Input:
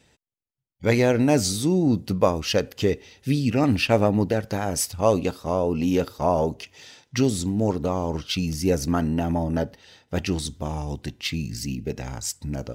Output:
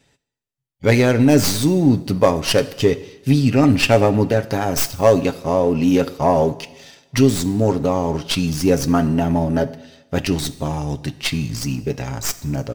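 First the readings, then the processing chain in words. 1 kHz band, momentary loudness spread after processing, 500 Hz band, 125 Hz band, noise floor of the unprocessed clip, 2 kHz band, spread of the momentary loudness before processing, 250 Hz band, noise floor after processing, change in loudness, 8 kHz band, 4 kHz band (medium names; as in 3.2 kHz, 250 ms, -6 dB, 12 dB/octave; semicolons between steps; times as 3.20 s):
+5.5 dB, 11 LU, +6.0 dB, +6.0 dB, -73 dBFS, +6.0 dB, 11 LU, +6.0 dB, -72 dBFS, +6.0 dB, +4.0 dB, +5.5 dB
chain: tracing distortion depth 0.091 ms; comb 7.3 ms, depth 38%; waveshaping leveller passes 1; two-slope reverb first 0.93 s, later 2.6 s, from -24 dB, DRR 13.5 dB; trim +1.5 dB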